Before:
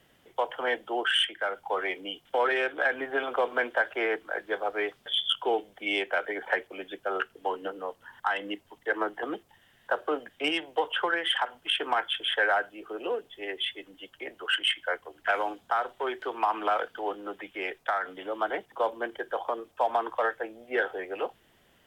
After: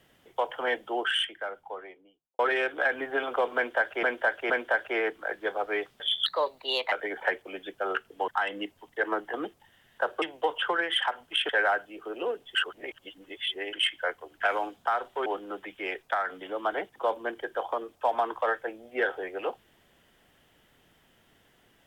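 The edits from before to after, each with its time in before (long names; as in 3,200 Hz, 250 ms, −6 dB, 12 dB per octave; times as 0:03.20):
0:00.85–0:02.39: fade out and dull
0:03.56–0:04.03: repeat, 3 plays
0:05.32–0:06.17: play speed 129%
0:07.53–0:08.17: remove
0:10.11–0:10.56: remove
0:11.83–0:12.33: remove
0:13.39–0:14.57: reverse
0:16.10–0:17.02: remove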